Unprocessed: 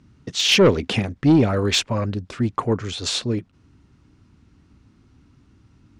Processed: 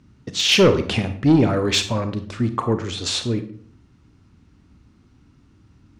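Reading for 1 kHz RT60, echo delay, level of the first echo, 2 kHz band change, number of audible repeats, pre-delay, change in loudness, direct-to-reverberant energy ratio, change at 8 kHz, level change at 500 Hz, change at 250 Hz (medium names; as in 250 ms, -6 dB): 0.50 s, no echo, no echo, +0.5 dB, no echo, 31 ms, +0.5 dB, 8.5 dB, +0.5 dB, +0.5 dB, +0.5 dB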